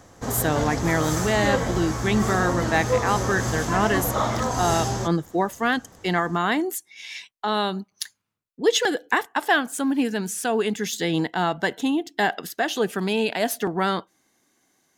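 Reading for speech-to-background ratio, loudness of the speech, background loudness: 1.5 dB, -24.5 LUFS, -26.0 LUFS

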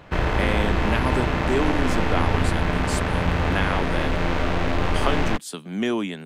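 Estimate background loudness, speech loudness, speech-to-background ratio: -24.0 LUFS, -28.5 LUFS, -4.5 dB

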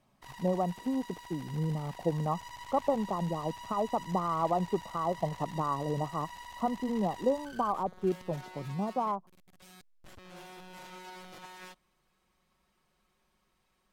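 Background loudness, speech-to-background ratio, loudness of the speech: -47.5 LUFS, 14.5 dB, -33.0 LUFS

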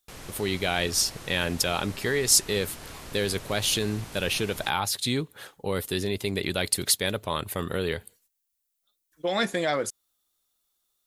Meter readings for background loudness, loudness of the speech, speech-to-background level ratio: -42.5 LUFS, -26.5 LUFS, 16.0 dB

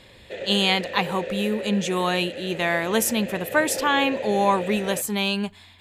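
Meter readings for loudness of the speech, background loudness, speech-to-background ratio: -23.5 LUFS, -33.0 LUFS, 9.5 dB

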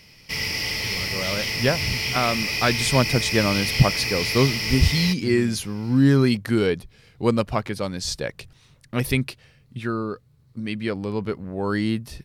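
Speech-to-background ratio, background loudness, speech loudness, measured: 0.5 dB, -24.0 LUFS, -23.5 LUFS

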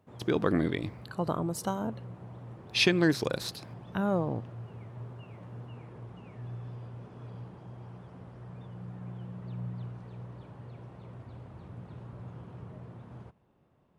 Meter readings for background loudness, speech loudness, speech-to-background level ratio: -45.0 LUFS, -30.0 LUFS, 15.0 dB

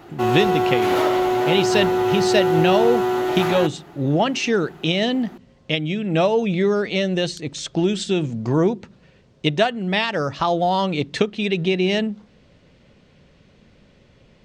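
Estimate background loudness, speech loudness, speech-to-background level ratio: -20.0 LUFS, -21.5 LUFS, -1.5 dB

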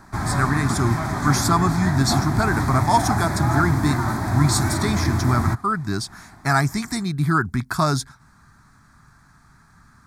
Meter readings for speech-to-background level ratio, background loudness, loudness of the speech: 1.0 dB, -23.5 LUFS, -22.5 LUFS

